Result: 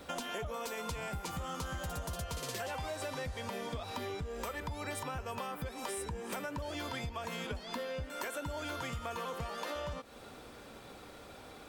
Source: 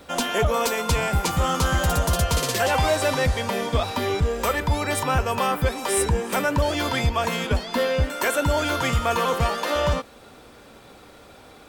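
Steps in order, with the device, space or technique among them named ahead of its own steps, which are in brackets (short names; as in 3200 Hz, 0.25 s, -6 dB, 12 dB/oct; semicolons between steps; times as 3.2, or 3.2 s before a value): serial compression, peaks first (compressor, threshold -29 dBFS, peak gain reduction 12 dB; compressor 2:1, threshold -35 dBFS, peak gain reduction 5 dB); gain -4 dB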